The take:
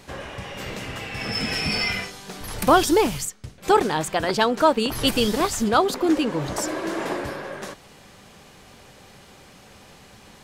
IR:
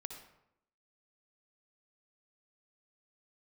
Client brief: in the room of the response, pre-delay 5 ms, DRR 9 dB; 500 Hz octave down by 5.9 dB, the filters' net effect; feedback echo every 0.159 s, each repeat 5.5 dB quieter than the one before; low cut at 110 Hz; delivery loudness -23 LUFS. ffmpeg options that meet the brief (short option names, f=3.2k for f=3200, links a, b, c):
-filter_complex "[0:a]highpass=110,equalizer=f=500:t=o:g=-8,aecho=1:1:159|318|477|636|795|954|1113:0.531|0.281|0.149|0.079|0.0419|0.0222|0.0118,asplit=2[a][b];[1:a]atrim=start_sample=2205,adelay=5[c];[b][c]afir=irnorm=-1:irlink=0,volume=-6dB[d];[a][d]amix=inputs=2:normalize=0"